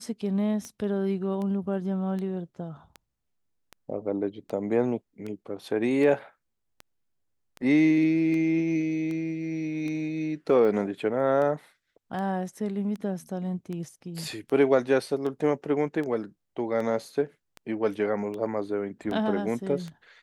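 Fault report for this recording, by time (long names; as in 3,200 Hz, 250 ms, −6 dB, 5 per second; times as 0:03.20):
scratch tick 78 rpm −24 dBFS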